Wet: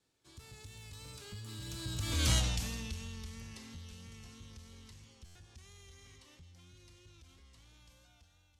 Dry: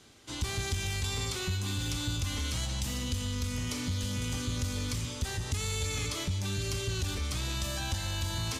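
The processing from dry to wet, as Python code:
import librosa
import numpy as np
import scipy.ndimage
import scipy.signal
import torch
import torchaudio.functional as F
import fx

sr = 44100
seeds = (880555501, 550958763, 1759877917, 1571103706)

y = fx.fade_out_tail(x, sr, length_s=0.98)
y = fx.doppler_pass(y, sr, speed_mps=36, closest_m=4.0, pass_at_s=2.32)
y = fx.vibrato(y, sr, rate_hz=3.0, depth_cents=30.0)
y = fx.buffer_glitch(y, sr, at_s=(5.25,), block=512, repeats=8)
y = y * 10.0 ** (5.5 / 20.0)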